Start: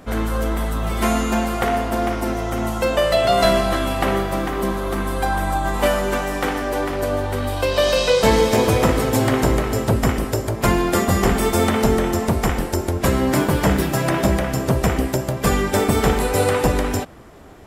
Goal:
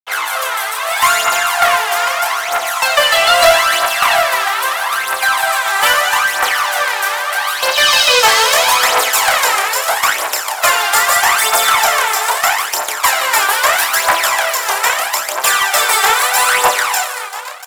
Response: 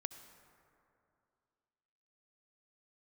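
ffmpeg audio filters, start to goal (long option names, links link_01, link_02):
-filter_complex "[0:a]aecho=1:1:172|689|813:0.211|0.251|0.112,aeval=exprs='sgn(val(0))*max(abs(val(0))-0.0335,0)':channel_layout=same,highpass=frequency=840:width=0.5412,highpass=frequency=840:width=1.3066,asplit=2[link_01][link_02];[link_02]adelay=30,volume=-4.5dB[link_03];[link_01][link_03]amix=inputs=2:normalize=0,asplit=2[link_04][link_05];[1:a]atrim=start_sample=2205[link_06];[link_05][link_06]afir=irnorm=-1:irlink=0,volume=4dB[link_07];[link_04][link_07]amix=inputs=2:normalize=0,aphaser=in_gain=1:out_gain=1:delay=2.6:decay=0.6:speed=0.78:type=triangular,acontrast=84,volume=-1dB"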